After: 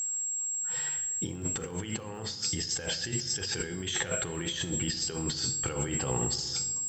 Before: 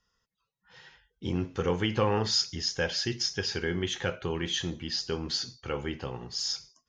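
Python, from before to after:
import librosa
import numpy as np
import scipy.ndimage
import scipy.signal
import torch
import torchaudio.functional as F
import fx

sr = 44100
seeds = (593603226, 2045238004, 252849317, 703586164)

y = x + 10.0 ** (-40.0 / 20.0) * np.sin(2.0 * np.pi * 7600.0 * np.arange(len(x)) / sr)
y = fx.over_compress(y, sr, threshold_db=-38.0, ratio=-1.0)
y = fx.dmg_crackle(y, sr, seeds[0], per_s=110.0, level_db=-52.0)
y = fx.room_shoebox(y, sr, seeds[1], volume_m3=2400.0, walls='mixed', distance_m=0.57)
y = y * librosa.db_to_amplitude(4.0)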